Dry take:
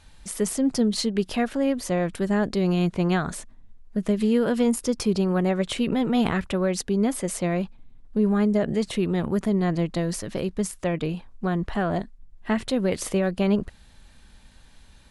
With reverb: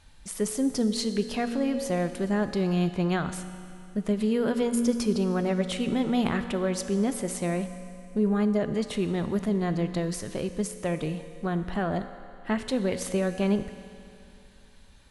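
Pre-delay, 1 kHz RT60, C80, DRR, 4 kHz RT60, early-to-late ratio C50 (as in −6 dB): 4 ms, 2.7 s, 10.5 dB, 9.0 dB, 2.5 s, 10.0 dB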